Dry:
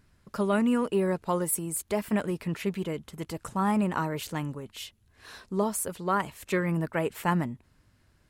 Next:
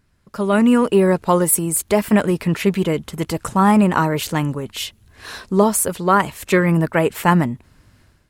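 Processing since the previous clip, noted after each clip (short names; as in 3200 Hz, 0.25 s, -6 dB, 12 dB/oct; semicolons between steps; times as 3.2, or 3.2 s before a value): AGC gain up to 14 dB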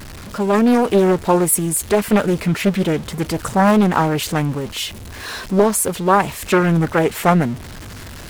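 zero-crossing step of -28.5 dBFS; Doppler distortion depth 0.6 ms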